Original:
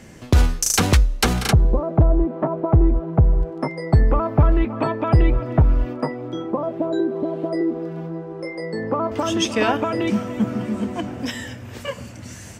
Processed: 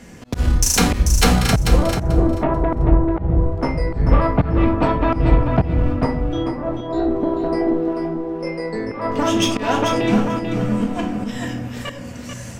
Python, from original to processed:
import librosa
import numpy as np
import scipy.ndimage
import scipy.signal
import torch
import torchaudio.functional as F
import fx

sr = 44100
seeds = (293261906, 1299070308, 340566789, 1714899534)

p1 = fx.cheby_harmonics(x, sr, harmonics=(6,), levels_db=(-20,), full_scale_db=-6.5)
p2 = fx.room_shoebox(p1, sr, seeds[0], volume_m3=500.0, walls='furnished', distance_m=1.8)
p3 = fx.auto_swell(p2, sr, attack_ms=208.0)
y = p3 + fx.echo_feedback(p3, sr, ms=439, feedback_pct=16, wet_db=-7.0, dry=0)